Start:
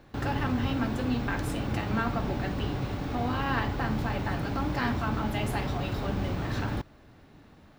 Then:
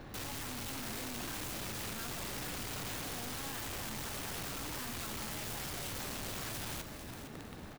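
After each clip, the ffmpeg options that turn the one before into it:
-filter_complex "[0:a]aeval=exprs='(tanh(70.8*val(0)+0.75)-tanh(0.75))/70.8':c=same,aeval=exprs='(mod(251*val(0)+1,2)-1)/251':c=same,asplit=5[a][b][c][d][e];[b]adelay=459,afreqshift=84,volume=-10dB[f];[c]adelay=918,afreqshift=168,volume=-18.2dB[g];[d]adelay=1377,afreqshift=252,volume=-26.4dB[h];[e]adelay=1836,afreqshift=336,volume=-34.5dB[i];[a][f][g][h][i]amix=inputs=5:normalize=0,volume=10.5dB"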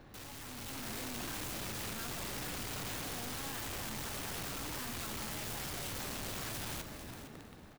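-af "dynaudnorm=f=190:g=7:m=7dB,volume=-7dB"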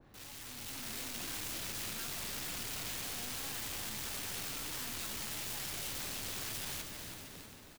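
-af "aecho=1:1:318|636|954|1272|1590|1908:0.398|0.211|0.112|0.0593|0.0314|0.0166,adynamicequalizer=threshold=0.00112:dfrequency=1800:dqfactor=0.7:tfrequency=1800:tqfactor=0.7:attack=5:release=100:ratio=0.375:range=3.5:mode=boostabove:tftype=highshelf,volume=-5.5dB"

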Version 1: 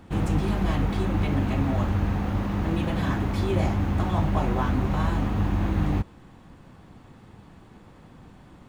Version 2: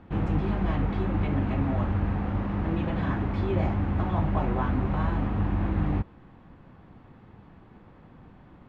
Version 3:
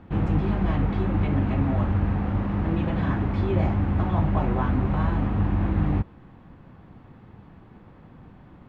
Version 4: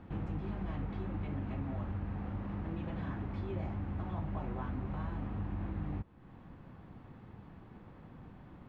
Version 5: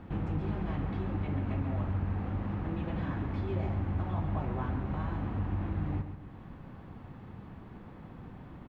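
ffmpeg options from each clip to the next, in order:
-af "lowpass=2.5k,volume=-2dB"
-af "equalizer=f=120:w=0.63:g=2.5,volume=1.5dB"
-af "acompressor=threshold=-39dB:ratio=2,volume=-4.5dB"
-af "aecho=1:1:137|274|411|548|685:0.355|0.145|0.0596|0.0245|0.01,volume=4.5dB"

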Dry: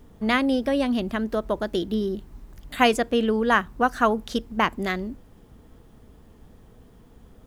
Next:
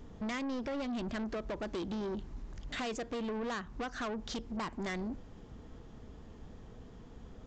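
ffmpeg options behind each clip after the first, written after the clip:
-af "acompressor=threshold=-26dB:ratio=6,aresample=16000,asoftclip=type=tanh:threshold=-34dB,aresample=44100"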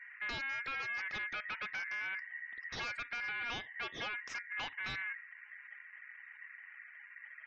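-af "lowpass=f=4.4k:w=0.5412,lowpass=f=4.4k:w=1.3066,afftfilt=real='re*gte(hypot(re,im),0.00224)':imag='im*gte(hypot(re,im),0.00224)':win_size=1024:overlap=0.75,aeval=exprs='val(0)*sin(2*PI*1900*n/s)':c=same"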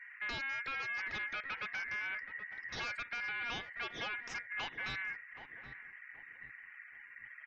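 -filter_complex "[0:a]asplit=2[a][b];[b]adelay=775,lowpass=f=830:p=1,volume=-8dB,asplit=2[c][d];[d]adelay=775,lowpass=f=830:p=1,volume=0.38,asplit=2[e][f];[f]adelay=775,lowpass=f=830:p=1,volume=0.38,asplit=2[g][h];[h]adelay=775,lowpass=f=830:p=1,volume=0.38[i];[a][c][e][g][i]amix=inputs=5:normalize=0"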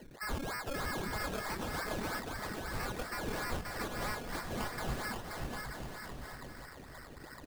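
-af "aemphasis=mode=reproduction:type=bsi,acrusher=samples=18:mix=1:aa=0.000001:lfo=1:lforange=10.8:lforate=3.1,aecho=1:1:530|927.5|1226|1449|1617:0.631|0.398|0.251|0.158|0.1,volume=1dB"

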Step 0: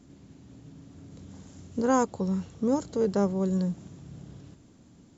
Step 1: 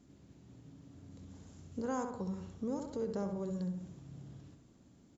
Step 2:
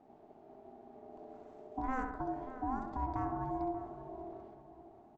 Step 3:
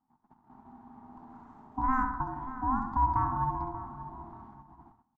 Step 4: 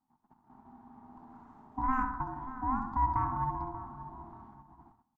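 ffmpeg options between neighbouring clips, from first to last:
-filter_complex "[0:a]asplit=2[a][b];[b]adelay=66,lowpass=f=2.5k:p=1,volume=-6dB,asplit=2[c][d];[d]adelay=66,lowpass=f=2.5k:p=1,volume=0.47,asplit=2[e][f];[f]adelay=66,lowpass=f=2.5k:p=1,volume=0.47,asplit=2[g][h];[h]adelay=66,lowpass=f=2.5k:p=1,volume=0.47,asplit=2[i][j];[j]adelay=66,lowpass=f=2.5k:p=1,volume=0.47,asplit=2[k][l];[l]adelay=66,lowpass=f=2.5k:p=1,volume=0.47[m];[a][c][e][g][i][k][m]amix=inputs=7:normalize=0,acompressor=threshold=-29dB:ratio=2,volume=-8dB"
-filter_complex "[0:a]adynamicsmooth=sensitivity=1.5:basefreq=2.2k,aeval=exprs='val(0)*sin(2*PI*520*n/s)':c=same,asplit=2[a][b];[b]adelay=584,lowpass=f=1.6k:p=1,volume=-12dB,asplit=2[c][d];[d]adelay=584,lowpass=f=1.6k:p=1,volume=0.38,asplit=2[e][f];[f]adelay=584,lowpass=f=1.6k:p=1,volume=0.38,asplit=2[g][h];[h]adelay=584,lowpass=f=1.6k:p=1,volume=0.38[i];[a][c][e][g][i]amix=inputs=5:normalize=0,volume=3.5dB"
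-af "agate=range=-22dB:threshold=-55dB:ratio=16:detection=peak,firequalizer=gain_entry='entry(250,0);entry(380,-21);entry(580,-27);entry(910,6);entry(2400,-11)':delay=0.05:min_phase=1,volume=8.5dB"
-af "aeval=exprs='0.188*(cos(1*acos(clip(val(0)/0.188,-1,1)))-cos(1*PI/2))+0.0133*(cos(2*acos(clip(val(0)/0.188,-1,1)))-cos(2*PI/2))':c=same,volume=-2.5dB"

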